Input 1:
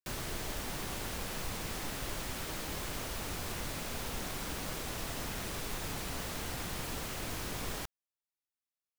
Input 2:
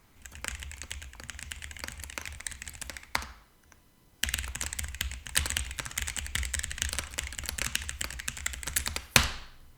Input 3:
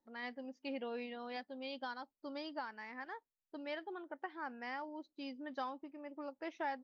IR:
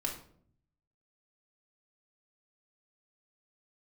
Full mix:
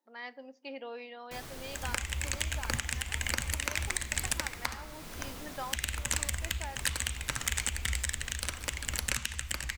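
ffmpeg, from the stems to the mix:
-filter_complex "[0:a]adelay=1250,volume=-6.5dB[a];[1:a]dynaudnorm=f=250:g=3:m=15dB,adelay=1500,volume=2.5dB[b];[2:a]highpass=380,volume=1dB,asplit=2[c][d];[d]volume=-16dB[e];[3:a]atrim=start_sample=2205[f];[e][f]afir=irnorm=-1:irlink=0[g];[a][b][c][g]amix=inputs=4:normalize=0,alimiter=limit=-11.5dB:level=0:latency=1:release=478"

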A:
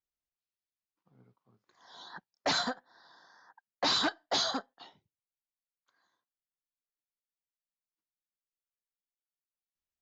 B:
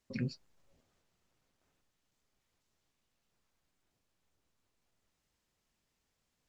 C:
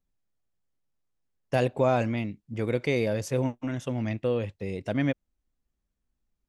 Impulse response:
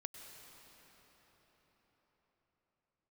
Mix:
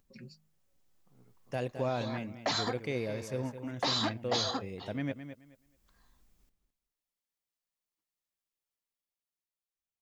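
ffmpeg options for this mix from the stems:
-filter_complex "[0:a]bandreject=f=1.5k:w=10,acompressor=threshold=-34dB:ratio=2.5,volume=-5dB[a];[1:a]aemphasis=mode=production:type=50fm,aecho=1:1:5.4:0.75,bandreject=f=52.17:t=h:w=4,bandreject=f=104.34:t=h:w=4,bandreject=f=156.51:t=h:w=4,bandreject=f=208.68:t=h:w=4,volume=-14.5dB[b];[2:a]acompressor=mode=upward:threshold=-39dB:ratio=2.5,volume=-17dB,asplit=2[c][d];[d]volume=-10.5dB,aecho=0:1:214|428|642:1|0.2|0.04[e];[a][b][c][e]amix=inputs=4:normalize=0,dynaudnorm=f=360:g=7:m=8dB"

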